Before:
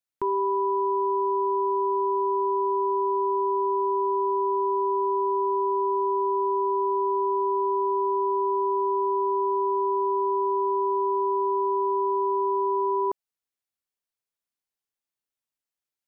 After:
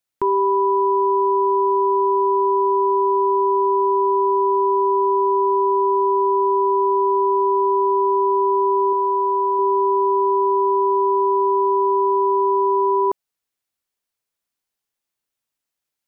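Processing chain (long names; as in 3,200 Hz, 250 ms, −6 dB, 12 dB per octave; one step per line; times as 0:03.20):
0:08.92–0:09.59: dynamic equaliser 380 Hz, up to −4 dB, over −38 dBFS, Q 3.1
level +7 dB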